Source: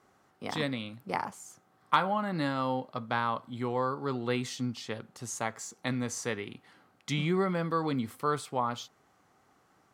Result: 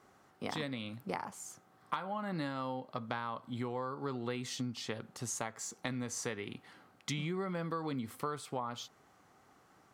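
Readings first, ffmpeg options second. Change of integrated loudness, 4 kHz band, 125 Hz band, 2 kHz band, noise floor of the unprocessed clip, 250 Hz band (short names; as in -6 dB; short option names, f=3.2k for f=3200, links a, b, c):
-7.0 dB, -5.0 dB, -6.0 dB, -7.5 dB, -67 dBFS, -6.5 dB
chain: -af "acompressor=threshold=-36dB:ratio=6,volume=1.5dB"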